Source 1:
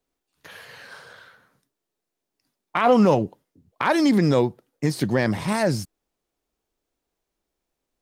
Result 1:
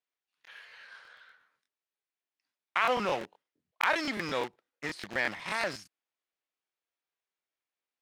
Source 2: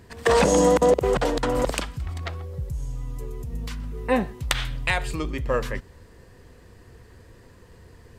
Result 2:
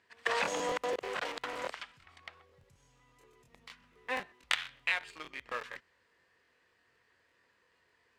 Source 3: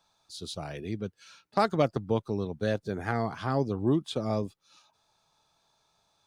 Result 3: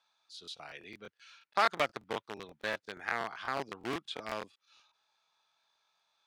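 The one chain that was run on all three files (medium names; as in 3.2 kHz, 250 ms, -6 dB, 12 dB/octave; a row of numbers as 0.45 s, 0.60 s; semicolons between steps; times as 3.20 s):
in parallel at -3 dB: small samples zeroed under -21.5 dBFS; on the sum: band-pass filter 2.2 kHz, Q 0.97; crackling interface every 0.12 s, samples 1024, repeat, from 0.43 s; peak normalisation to -12 dBFS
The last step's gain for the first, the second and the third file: -5.5 dB, -9.5 dB, 0.0 dB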